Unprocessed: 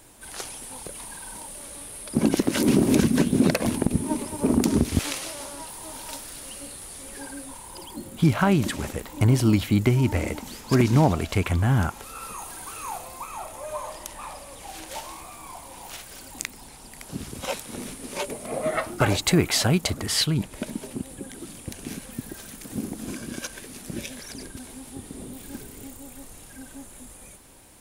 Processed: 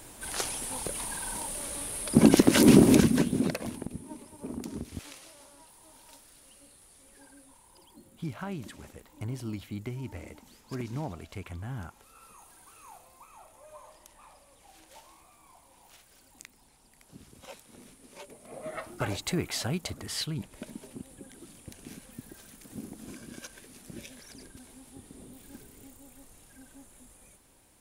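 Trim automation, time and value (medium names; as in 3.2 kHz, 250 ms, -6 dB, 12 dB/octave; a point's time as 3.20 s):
2.78 s +3 dB
3.47 s -9 dB
4.02 s -17 dB
18.30 s -17 dB
18.94 s -10.5 dB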